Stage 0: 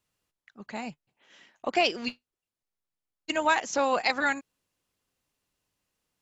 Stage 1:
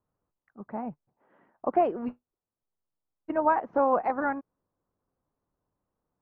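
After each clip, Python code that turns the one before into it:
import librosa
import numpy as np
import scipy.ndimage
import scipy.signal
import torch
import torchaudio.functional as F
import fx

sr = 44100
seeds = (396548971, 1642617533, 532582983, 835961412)

y = scipy.signal.sosfilt(scipy.signal.butter(4, 1200.0, 'lowpass', fs=sr, output='sos'), x)
y = F.gain(torch.from_numpy(y), 2.5).numpy()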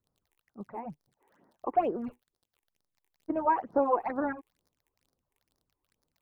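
y = fx.dmg_crackle(x, sr, seeds[0], per_s=42.0, level_db=-51.0)
y = fx.phaser_stages(y, sr, stages=8, low_hz=170.0, high_hz=2800.0, hz=2.2, feedback_pct=25)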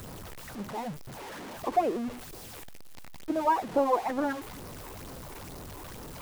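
y = x + 0.5 * 10.0 ** (-36.0 / 20.0) * np.sign(x)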